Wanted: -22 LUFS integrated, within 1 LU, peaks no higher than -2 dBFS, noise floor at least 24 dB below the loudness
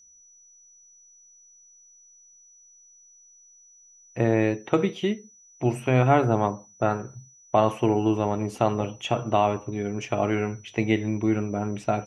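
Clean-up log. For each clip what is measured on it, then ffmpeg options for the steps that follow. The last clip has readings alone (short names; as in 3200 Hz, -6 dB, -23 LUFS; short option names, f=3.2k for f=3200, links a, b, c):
steady tone 5900 Hz; tone level -52 dBFS; loudness -25.0 LUFS; peak -6.5 dBFS; loudness target -22.0 LUFS
-> -af "bandreject=f=5.9k:w=30"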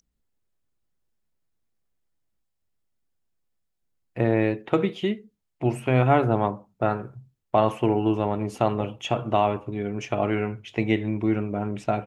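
steady tone none; loudness -25.0 LUFS; peak -6.5 dBFS; loudness target -22.0 LUFS
-> -af "volume=3dB"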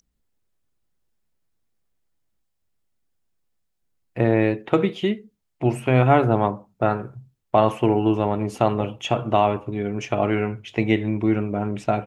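loudness -22.0 LUFS; peak -3.5 dBFS; noise floor -74 dBFS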